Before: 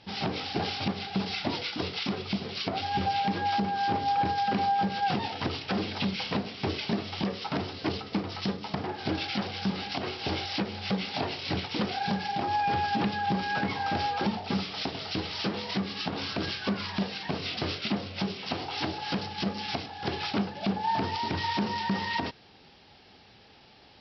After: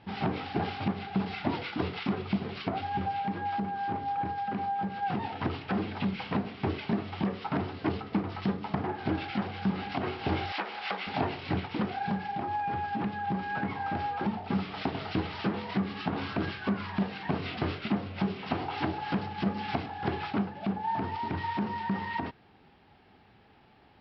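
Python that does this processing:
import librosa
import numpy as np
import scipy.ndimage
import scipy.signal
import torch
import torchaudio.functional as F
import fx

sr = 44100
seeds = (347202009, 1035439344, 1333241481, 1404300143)

y = fx.highpass(x, sr, hz=760.0, slope=12, at=(10.52, 11.07))
y = scipy.signal.sosfilt(scipy.signal.butter(2, 1900.0, 'lowpass', fs=sr, output='sos'), y)
y = fx.peak_eq(y, sr, hz=530.0, db=-5.0, octaves=0.57)
y = fx.rider(y, sr, range_db=10, speed_s=0.5)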